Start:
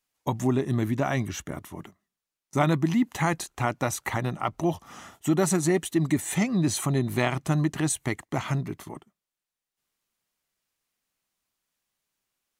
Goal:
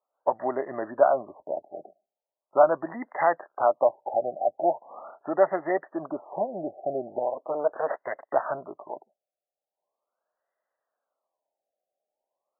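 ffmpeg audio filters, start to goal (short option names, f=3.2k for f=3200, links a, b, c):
-filter_complex "[0:a]asplit=2[a][b];[b]alimiter=limit=-17dB:level=0:latency=1:release=377,volume=-2.5dB[c];[a][c]amix=inputs=2:normalize=0,asettb=1/sr,asplit=3[d][e][f];[d]atrim=end=7.184[g];[e]atrim=start=7.18:end=8.22,asetpts=PTS-STARTPTS,afade=t=in:d=0.004:c=qsin,afade=t=out:st=1.036:d=0.004:c=qsin,aeval=exprs='abs(val(0))':c=same[h];[f]atrim=start=8.216[i];[g][h]acrossfade=d=0.004:c1=hsin:c2=qsin[j];[j][i]acrossfade=d=0.004:c1=qsin:c2=hsin,highpass=f=600:t=q:w=4.4,afftfilt=real='re*lt(b*sr/1024,800*pow(2100/800,0.5+0.5*sin(2*PI*0.4*pts/sr)))':imag='im*lt(b*sr/1024,800*pow(2100/800,0.5+0.5*sin(2*PI*0.4*pts/sr)))':win_size=1024:overlap=0.75,volume=-4dB"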